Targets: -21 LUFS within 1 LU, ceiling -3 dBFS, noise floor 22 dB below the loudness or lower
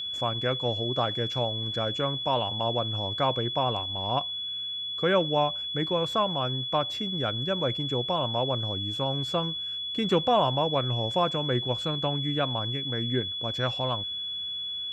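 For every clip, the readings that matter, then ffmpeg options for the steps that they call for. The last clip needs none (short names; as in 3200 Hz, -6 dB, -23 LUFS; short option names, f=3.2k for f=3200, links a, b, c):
steady tone 3400 Hz; tone level -31 dBFS; loudness -27.5 LUFS; peak -11.5 dBFS; loudness target -21.0 LUFS
-> -af "bandreject=f=3.4k:w=30"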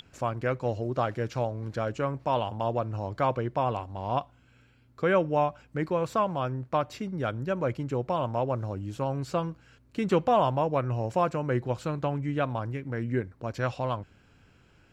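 steady tone none; loudness -29.5 LUFS; peak -12.5 dBFS; loudness target -21.0 LUFS
-> -af "volume=8.5dB"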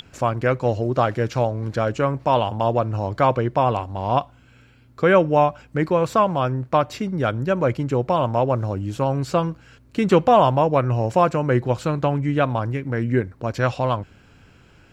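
loudness -21.0 LUFS; peak -4.0 dBFS; noise floor -52 dBFS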